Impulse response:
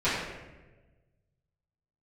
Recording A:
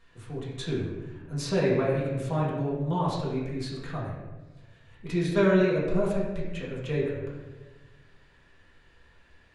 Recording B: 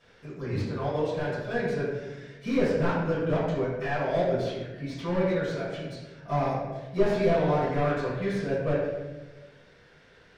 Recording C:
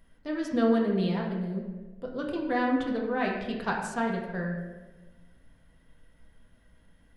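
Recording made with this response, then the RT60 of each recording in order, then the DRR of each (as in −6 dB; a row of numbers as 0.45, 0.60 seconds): B; 1.2, 1.2, 1.2 seconds; −7.5, −15.0, −2.0 decibels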